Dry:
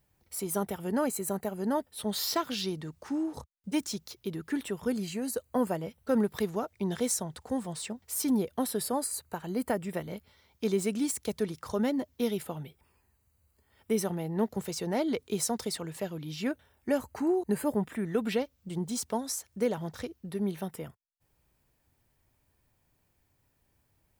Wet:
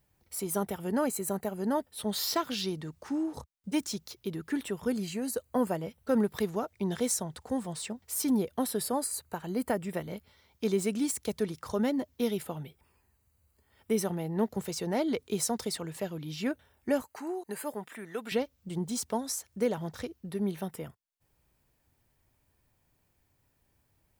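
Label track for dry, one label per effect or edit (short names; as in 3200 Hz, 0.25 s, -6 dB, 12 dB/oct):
17.020000	18.320000	HPF 930 Hz 6 dB/oct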